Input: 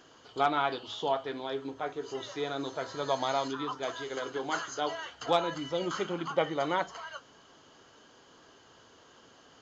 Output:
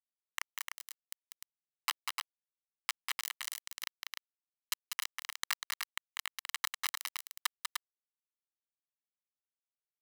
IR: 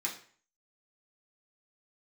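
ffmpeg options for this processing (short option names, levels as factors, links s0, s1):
-af "aeval=exprs='(mod(10.6*val(0)+1,2)-1)/10.6':c=same,acompressor=threshold=0.00891:ratio=10,aeval=exprs='val(0)*sin(2*PI*130*n/s)':c=same,asuperstop=centerf=3600:order=4:qfactor=0.6,equalizer=f=2100:w=0.4:g=11.5,acrusher=bits=4:mix=0:aa=0.000001,highpass=f=1300:w=0.5412,highpass=f=1300:w=1.3066,aecho=1:1:186.6|288.6:0.562|0.562,asetrate=42336,aresample=44100,aecho=1:1:1:0.64,volume=2.82"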